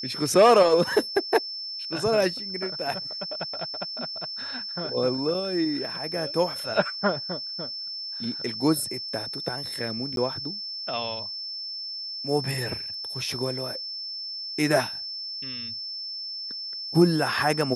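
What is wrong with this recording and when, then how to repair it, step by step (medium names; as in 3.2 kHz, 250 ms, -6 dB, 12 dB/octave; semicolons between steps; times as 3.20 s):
whine 5.3 kHz -32 dBFS
10.16–10.17 s: dropout 12 ms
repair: band-stop 5.3 kHz, Q 30; interpolate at 10.16 s, 12 ms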